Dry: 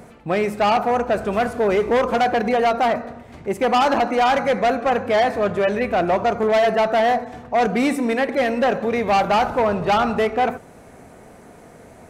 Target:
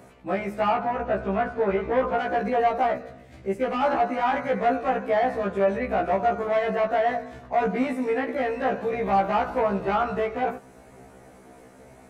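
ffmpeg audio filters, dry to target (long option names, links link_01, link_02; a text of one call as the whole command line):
ffmpeg -i in.wav -filter_complex "[0:a]acrossover=split=2500[link_01][link_02];[link_02]acompressor=threshold=-46dB:ratio=4:attack=1:release=60[link_03];[link_01][link_03]amix=inputs=2:normalize=0,asettb=1/sr,asplit=3[link_04][link_05][link_06];[link_04]atrim=end=0.734[link_07];[link_05]atrim=start=0.73:end=2.19,asetpts=PTS-STARTPTS,afade=type=in:duration=0.004:curve=qsin,afade=type=out:start_time=1.456:duration=0.004:curve=qsin,lowpass=3800[link_08];[link_06]atrim=start=2.186[link_09];[link_07][link_08]acrossfade=duration=0.004:curve1=hsin:curve2=qsin[link_10];[link_10][link_09]acrossfade=duration=0.004:curve1=qsin:curve2=hsin,asettb=1/sr,asplit=3[link_11][link_12][link_13];[link_11]atrim=end=2.934[link_14];[link_12]atrim=start=2.93:end=3.83,asetpts=PTS-STARTPTS,afade=type=in:duration=0.004:curve=qsin,afade=type=out:start_time=0.896:duration=0.004:curve=qsin,equalizer=frequency=950:width_type=o:width=0.88:gain=-8[link_15];[link_13]atrim=start=3.826[link_16];[link_14][link_15]acrossfade=duration=0.004:curve1=hsin:curve2=qsin[link_17];[link_17][link_16]acrossfade=duration=0.004:curve1=qsin:curve2=hsin,afftfilt=real='re*1.73*eq(mod(b,3),0)':imag='im*1.73*eq(mod(b,3),0)':win_size=2048:overlap=0.75,volume=-2.5dB" out.wav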